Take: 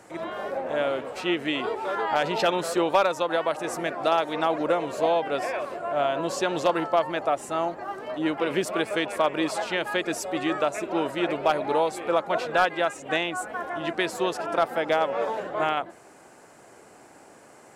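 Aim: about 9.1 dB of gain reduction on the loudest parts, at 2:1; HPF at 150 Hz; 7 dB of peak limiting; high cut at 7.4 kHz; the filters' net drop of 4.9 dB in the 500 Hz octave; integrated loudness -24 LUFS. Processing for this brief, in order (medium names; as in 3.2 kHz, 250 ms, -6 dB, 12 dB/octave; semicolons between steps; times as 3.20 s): high-pass 150 Hz; low-pass 7.4 kHz; peaking EQ 500 Hz -6.5 dB; compression 2:1, threshold -36 dBFS; trim +13 dB; peak limiter -12 dBFS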